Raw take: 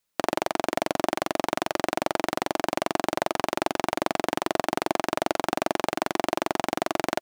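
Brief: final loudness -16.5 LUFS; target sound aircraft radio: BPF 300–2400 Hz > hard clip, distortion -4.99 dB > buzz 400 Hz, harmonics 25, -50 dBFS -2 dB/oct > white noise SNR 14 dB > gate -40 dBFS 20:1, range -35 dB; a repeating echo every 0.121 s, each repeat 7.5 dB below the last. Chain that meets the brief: BPF 300–2400 Hz; feedback echo 0.121 s, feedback 42%, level -7.5 dB; hard clip -23.5 dBFS; buzz 400 Hz, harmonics 25, -50 dBFS -2 dB/oct; white noise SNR 14 dB; gate -40 dBFS 20:1, range -35 dB; gain +16 dB

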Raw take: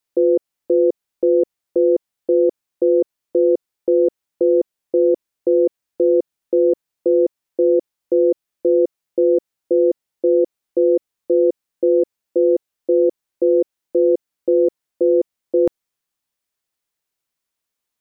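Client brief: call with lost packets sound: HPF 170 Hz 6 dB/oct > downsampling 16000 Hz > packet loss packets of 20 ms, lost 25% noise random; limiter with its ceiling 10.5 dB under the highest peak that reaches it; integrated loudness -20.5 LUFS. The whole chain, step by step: limiter -18.5 dBFS; HPF 170 Hz 6 dB/oct; downsampling 16000 Hz; packet loss packets of 20 ms, lost 25% noise random; gain +9.5 dB

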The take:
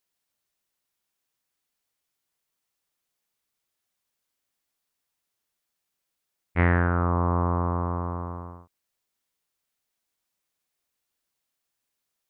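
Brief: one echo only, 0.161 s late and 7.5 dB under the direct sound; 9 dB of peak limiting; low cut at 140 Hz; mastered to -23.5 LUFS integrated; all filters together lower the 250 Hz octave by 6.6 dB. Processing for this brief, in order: HPF 140 Hz; bell 250 Hz -9 dB; limiter -16.5 dBFS; echo 0.161 s -7.5 dB; gain +9.5 dB

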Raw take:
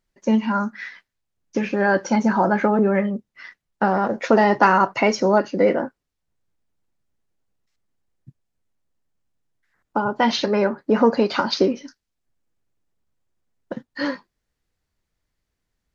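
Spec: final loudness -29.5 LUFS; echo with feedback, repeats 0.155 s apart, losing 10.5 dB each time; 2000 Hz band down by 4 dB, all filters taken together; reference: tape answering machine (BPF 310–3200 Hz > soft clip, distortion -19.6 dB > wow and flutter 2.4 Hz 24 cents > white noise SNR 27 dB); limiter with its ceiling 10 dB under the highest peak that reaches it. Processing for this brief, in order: bell 2000 Hz -5 dB; limiter -13.5 dBFS; BPF 310–3200 Hz; feedback echo 0.155 s, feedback 30%, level -10.5 dB; soft clip -16.5 dBFS; wow and flutter 2.4 Hz 24 cents; white noise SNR 27 dB; gain -1.5 dB

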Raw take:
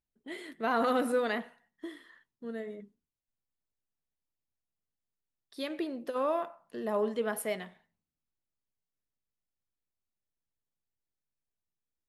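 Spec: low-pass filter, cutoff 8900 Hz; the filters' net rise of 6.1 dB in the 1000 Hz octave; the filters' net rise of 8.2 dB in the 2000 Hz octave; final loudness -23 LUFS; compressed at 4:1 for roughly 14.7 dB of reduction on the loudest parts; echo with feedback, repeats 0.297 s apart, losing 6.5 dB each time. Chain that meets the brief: LPF 8900 Hz; bell 1000 Hz +5.5 dB; bell 2000 Hz +8.5 dB; compressor 4:1, threshold -38 dBFS; feedback echo 0.297 s, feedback 47%, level -6.5 dB; gain +18 dB

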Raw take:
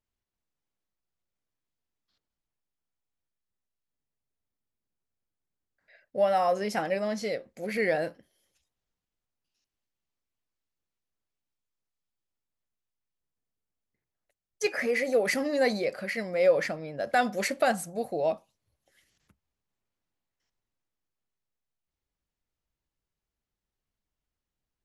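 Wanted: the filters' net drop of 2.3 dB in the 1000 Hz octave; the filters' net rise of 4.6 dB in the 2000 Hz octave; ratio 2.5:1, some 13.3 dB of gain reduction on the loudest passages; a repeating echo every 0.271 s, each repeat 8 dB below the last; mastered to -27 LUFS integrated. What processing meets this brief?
bell 1000 Hz -5 dB; bell 2000 Hz +6.5 dB; compressor 2.5:1, threshold -39 dBFS; feedback echo 0.271 s, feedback 40%, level -8 dB; gain +10.5 dB

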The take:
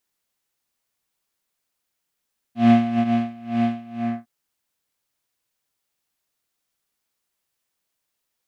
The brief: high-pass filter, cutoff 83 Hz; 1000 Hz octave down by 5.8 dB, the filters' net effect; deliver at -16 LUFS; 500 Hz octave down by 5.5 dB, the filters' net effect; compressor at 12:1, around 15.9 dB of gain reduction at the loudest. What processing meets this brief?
HPF 83 Hz; bell 500 Hz -3 dB; bell 1000 Hz -8.5 dB; compressor 12:1, threshold -28 dBFS; gain +18 dB

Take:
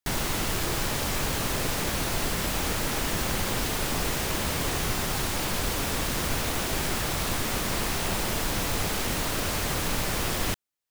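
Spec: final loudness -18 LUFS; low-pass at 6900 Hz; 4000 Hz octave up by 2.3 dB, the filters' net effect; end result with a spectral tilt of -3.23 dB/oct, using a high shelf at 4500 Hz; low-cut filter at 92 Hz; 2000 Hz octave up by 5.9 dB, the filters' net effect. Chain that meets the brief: HPF 92 Hz; LPF 6900 Hz; bell 2000 Hz +7.5 dB; bell 4000 Hz +4.5 dB; high shelf 4500 Hz -7 dB; gain +9 dB

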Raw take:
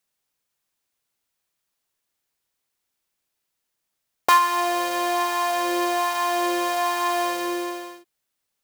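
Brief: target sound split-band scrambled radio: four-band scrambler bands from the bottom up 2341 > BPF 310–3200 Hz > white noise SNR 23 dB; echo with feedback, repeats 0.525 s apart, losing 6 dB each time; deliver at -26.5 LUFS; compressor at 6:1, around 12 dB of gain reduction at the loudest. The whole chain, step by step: compressor 6:1, threshold -25 dBFS; feedback echo 0.525 s, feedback 50%, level -6 dB; four-band scrambler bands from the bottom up 2341; BPF 310–3200 Hz; white noise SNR 23 dB; gain +6.5 dB

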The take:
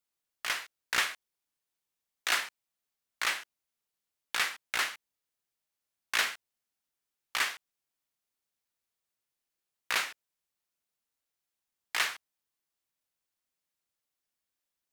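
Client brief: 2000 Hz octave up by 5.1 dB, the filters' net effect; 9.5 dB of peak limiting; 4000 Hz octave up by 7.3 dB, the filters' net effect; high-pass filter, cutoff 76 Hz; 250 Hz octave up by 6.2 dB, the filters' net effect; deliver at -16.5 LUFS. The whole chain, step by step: HPF 76 Hz; bell 250 Hz +8 dB; bell 2000 Hz +4 dB; bell 4000 Hz +8 dB; gain +15 dB; limiter -2.5 dBFS

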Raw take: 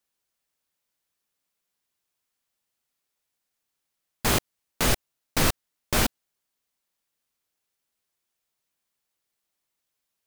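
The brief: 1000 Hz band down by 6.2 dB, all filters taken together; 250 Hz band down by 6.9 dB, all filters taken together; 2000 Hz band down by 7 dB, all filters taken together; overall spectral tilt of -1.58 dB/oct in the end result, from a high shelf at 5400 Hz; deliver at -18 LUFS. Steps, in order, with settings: bell 250 Hz -9 dB; bell 1000 Hz -5.5 dB; bell 2000 Hz -8.5 dB; high shelf 5400 Hz +7 dB; gain +6 dB

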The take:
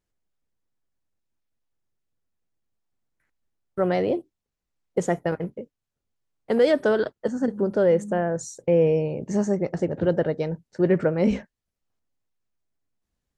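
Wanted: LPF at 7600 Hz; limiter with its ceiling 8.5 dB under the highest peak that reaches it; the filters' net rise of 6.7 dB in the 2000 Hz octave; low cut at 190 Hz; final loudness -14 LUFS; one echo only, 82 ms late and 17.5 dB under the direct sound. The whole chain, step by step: HPF 190 Hz; LPF 7600 Hz; bell 2000 Hz +8.5 dB; limiter -16 dBFS; echo 82 ms -17.5 dB; gain +13.5 dB

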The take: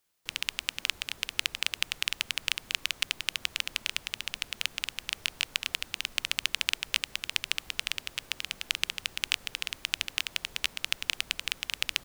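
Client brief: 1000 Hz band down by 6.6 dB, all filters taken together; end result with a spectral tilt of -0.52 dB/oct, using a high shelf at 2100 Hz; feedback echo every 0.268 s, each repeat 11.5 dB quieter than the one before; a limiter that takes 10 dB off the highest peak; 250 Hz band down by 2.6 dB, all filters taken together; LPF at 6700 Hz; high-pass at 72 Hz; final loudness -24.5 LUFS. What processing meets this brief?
HPF 72 Hz; LPF 6700 Hz; bell 250 Hz -3 dB; bell 1000 Hz -7 dB; high shelf 2100 Hz -6 dB; limiter -19.5 dBFS; feedback echo 0.268 s, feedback 27%, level -11.5 dB; gain +17.5 dB

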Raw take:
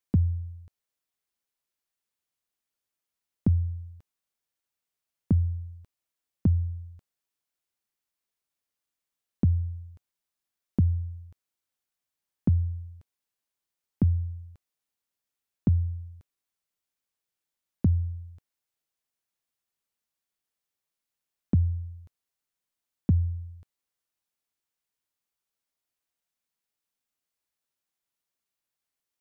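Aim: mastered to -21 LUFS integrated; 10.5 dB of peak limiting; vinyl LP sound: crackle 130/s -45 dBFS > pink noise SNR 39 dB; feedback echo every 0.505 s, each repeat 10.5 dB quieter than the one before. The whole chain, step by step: limiter -25 dBFS; feedback echo 0.505 s, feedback 30%, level -10.5 dB; crackle 130/s -45 dBFS; pink noise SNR 39 dB; gain +15.5 dB

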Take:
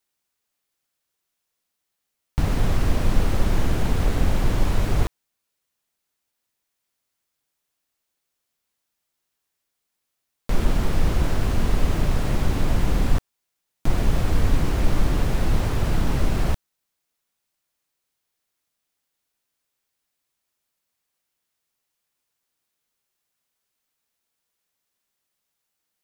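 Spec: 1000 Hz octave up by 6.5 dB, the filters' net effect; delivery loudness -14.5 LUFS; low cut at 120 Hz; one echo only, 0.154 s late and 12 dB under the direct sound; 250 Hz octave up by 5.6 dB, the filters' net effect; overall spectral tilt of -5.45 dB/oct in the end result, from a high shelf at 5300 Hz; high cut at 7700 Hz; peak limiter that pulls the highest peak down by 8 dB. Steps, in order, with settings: HPF 120 Hz; LPF 7700 Hz; bell 250 Hz +7.5 dB; bell 1000 Hz +7.5 dB; high shelf 5300 Hz +7.5 dB; limiter -18 dBFS; echo 0.154 s -12 dB; gain +13 dB

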